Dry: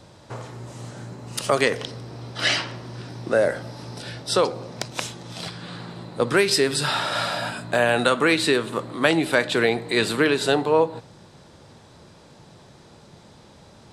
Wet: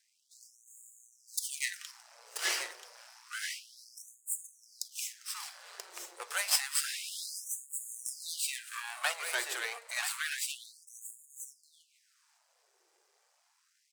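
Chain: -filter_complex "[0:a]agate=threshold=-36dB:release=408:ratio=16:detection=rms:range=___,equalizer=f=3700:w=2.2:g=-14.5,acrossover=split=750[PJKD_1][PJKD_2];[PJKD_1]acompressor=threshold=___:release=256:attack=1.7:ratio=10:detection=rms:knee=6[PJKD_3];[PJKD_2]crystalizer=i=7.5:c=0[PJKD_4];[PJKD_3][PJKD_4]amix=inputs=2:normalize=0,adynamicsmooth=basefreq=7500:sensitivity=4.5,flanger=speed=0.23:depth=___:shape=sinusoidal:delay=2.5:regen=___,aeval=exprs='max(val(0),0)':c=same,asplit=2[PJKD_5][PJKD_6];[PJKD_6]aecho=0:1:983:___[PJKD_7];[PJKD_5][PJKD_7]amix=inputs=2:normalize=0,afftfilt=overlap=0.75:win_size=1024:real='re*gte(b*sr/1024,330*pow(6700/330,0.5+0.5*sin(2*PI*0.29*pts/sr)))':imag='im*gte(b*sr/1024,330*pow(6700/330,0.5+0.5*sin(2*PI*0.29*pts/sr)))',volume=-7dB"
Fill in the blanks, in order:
-8dB, -31dB, 3.5, 50, 0.422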